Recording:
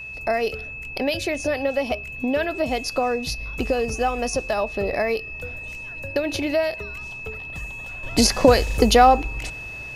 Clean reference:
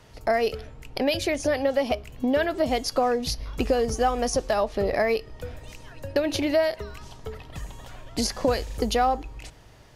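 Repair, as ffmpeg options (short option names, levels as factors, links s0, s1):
-af "bandreject=f=61.8:t=h:w=4,bandreject=f=123.6:t=h:w=4,bandreject=f=185.4:t=h:w=4,bandreject=f=2600:w=30,asetnsamples=n=441:p=0,asendcmd='8.03 volume volume -9dB',volume=1"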